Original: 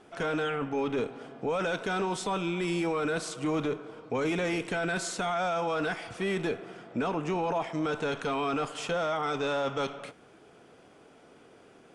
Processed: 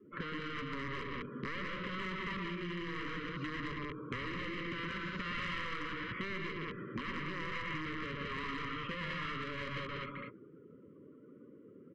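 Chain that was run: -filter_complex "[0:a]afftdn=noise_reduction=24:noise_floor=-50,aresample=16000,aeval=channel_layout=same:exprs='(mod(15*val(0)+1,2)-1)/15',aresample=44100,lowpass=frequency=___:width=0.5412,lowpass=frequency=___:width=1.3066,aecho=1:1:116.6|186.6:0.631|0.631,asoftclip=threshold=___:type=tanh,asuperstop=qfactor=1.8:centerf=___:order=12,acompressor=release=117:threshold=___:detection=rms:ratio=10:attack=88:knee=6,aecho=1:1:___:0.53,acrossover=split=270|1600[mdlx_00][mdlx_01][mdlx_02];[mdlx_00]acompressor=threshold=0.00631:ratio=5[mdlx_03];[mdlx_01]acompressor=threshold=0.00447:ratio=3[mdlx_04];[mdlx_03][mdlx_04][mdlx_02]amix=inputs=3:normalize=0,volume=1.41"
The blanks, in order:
2.5k, 2.5k, 0.075, 760, 0.00891, 1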